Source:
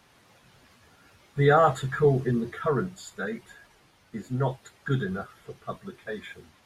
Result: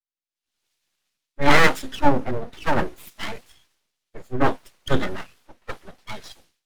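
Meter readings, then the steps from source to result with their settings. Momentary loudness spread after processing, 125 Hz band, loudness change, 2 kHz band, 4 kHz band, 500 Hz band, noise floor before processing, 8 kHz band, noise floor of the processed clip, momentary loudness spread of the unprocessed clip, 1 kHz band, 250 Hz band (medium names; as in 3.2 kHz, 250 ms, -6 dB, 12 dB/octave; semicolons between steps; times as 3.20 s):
22 LU, -3.0 dB, +3.5 dB, +9.0 dB, +13.0 dB, -0.5 dB, -61 dBFS, +8.0 dB, under -85 dBFS, 19 LU, +4.0 dB, +4.0 dB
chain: full-wave rectifier; level rider gain up to 13 dB; three bands expanded up and down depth 100%; trim -5.5 dB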